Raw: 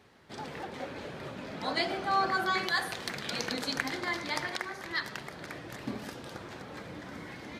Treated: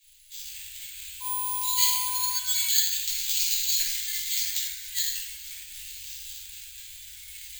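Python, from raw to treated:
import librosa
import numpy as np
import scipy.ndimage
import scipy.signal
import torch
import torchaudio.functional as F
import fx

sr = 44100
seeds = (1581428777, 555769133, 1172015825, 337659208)

y = scipy.signal.sosfilt(scipy.signal.cheby2(4, 70, [170.0, 840.0], 'bandstop', fs=sr, output='sos'), x)
y = fx.dmg_tone(y, sr, hz=1000.0, level_db=-45.0, at=(1.2, 2.31), fade=0.02)
y = fx.room_shoebox(y, sr, seeds[0], volume_m3=460.0, walls='mixed', distance_m=5.6)
y = (np.kron(scipy.signal.resample_poly(y, 1, 4), np.eye(4)[0]) * 4)[:len(y)]
y = y * 10.0 ** (-2.0 / 20.0)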